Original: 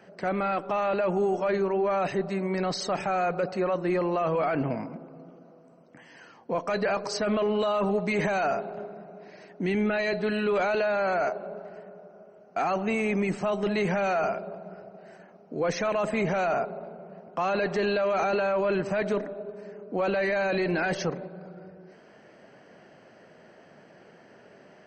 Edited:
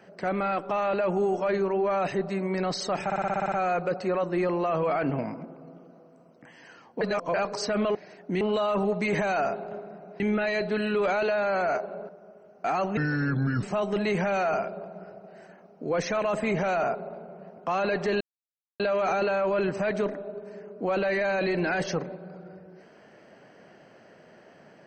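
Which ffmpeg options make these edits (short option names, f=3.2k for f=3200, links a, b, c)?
-filter_complex "[0:a]asplit=18[a][b][c][d][e][f][g][h][i][j][k][l][m][n][o][p][q][r];[a]atrim=end=3.102[s];[b]atrim=start=3.038:end=3.102[t];[c]atrim=start=3.038:end=3.102[u];[d]atrim=start=3.038:end=3.102[v];[e]atrim=start=3.038:end=3.102[w];[f]atrim=start=3.038:end=3.102[x];[g]atrim=start=3.038:end=3.102[y];[h]atrim=start=3.038:end=3.102[z];[i]atrim=start=3.038:end=6.532[aa];[j]atrim=start=6.528:end=6.862,asetpts=PTS-STARTPTS,areverse[ab];[k]atrim=start=6.858:end=7.472[ac];[l]atrim=start=9.258:end=9.722[ad];[m]atrim=start=7.468:end=9.262[ae];[n]atrim=start=9.718:end=11.612[af];[o]atrim=start=12.008:end=12.894[ag];[p]atrim=start=12.89:end=13.33,asetpts=PTS-STARTPTS,asetrate=29547,aresample=44100,atrim=end_sample=28961,asetpts=PTS-STARTPTS[ah];[q]atrim=start=13.326:end=17.91,asetpts=PTS-STARTPTS,afade=t=out:st=4.58:d=0.004:c=hsin,apad=pad_dur=0.59[ai];[r]atrim=start=17.91,asetpts=PTS-STARTPTS,afade=t=in:d=0.004:c=hsin[aj];[s][t]acrossfade=d=0.004:c1=hsin:c2=hsin[ak];[ak][u]acrossfade=d=0.004:c1=hsin:c2=hsin[al];[al][v]acrossfade=d=0.004:c1=hsin:c2=hsin[am];[am][w]acrossfade=d=0.004:c1=hsin:c2=hsin[an];[an][x]acrossfade=d=0.004:c1=hsin:c2=hsin[ao];[ao][y]acrossfade=d=0.004:c1=hsin:c2=hsin[ap];[ap][z]acrossfade=d=0.004:c1=hsin:c2=hsin[aq];[aq][aa]acrossfade=d=0.004:c1=hsin:c2=hsin[ar];[ar][ab]acrossfade=d=0.004:c1=hsin:c2=hsin[as];[as][ac]acrossfade=d=0.004:c1=hsin:c2=hsin[at];[at][ad]acrossfade=d=0.004:c1=hsin:c2=hsin[au];[au][ae]acrossfade=d=0.004:c1=hsin:c2=hsin[av];[av][af]acrossfade=d=0.004:c1=hsin:c2=hsin[aw];[aw][ag]acrossfade=d=0.004:c1=hsin:c2=hsin[ax];[ax][ah]acrossfade=d=0.004:c1=hsin:c2=hsin[ay];[ai][aj]concat=n=2:v=0:a=1[az];[ay][az]acrossfade=d=0.004:c1=hsin:c2=hsin"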